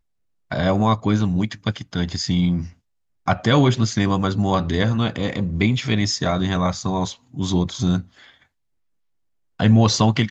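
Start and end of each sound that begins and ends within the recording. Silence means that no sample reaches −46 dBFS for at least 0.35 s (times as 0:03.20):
0:00.51–0:02.73
0:03.26–0:08.43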